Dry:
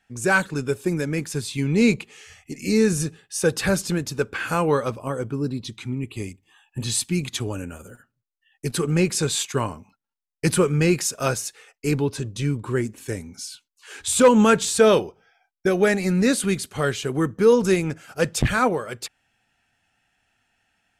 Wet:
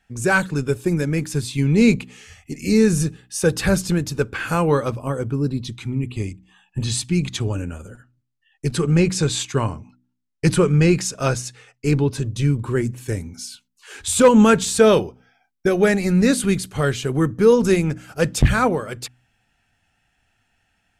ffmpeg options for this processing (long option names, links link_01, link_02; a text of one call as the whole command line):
ffmpeg -i in.wav -filter_complex "[0:a]asettb=1/sr,asplit=3[link_01][link_02][link_03];[link_01]atrim=end=6.114[link_04];[link_02]atrim=start=6.11:end=12.12,asetpts=PTS-STARTPTS,afade=type=in:duration=0.004:curve=qsin,afade=type=out:start_time=6.006:duration=0.004:curve=qsin,lowpass=8300[link_05];[link_03]atrim=start=12.116[link_06];[link_04][link_05]acrossfade=duration=0.004:curve1=hsin:curve2=qsin[link_07];[link_07][link_06]acrossfade=duration=0.004:curve1=qsin:curve2=hsin,lowshelf=frequency=140:gain=10.5,bandreject=frequency=62.06:width_type=h:width=4,bandreject=frequency=124.12:width_type=h:width=4,bandreject=frequency=186.18:width_type=h:width=4,bandreject=frequency=248.24:width_type=h:width=4,bandreject=frequency=310.3:width_type=h:width=4,volume=1dB" out.wav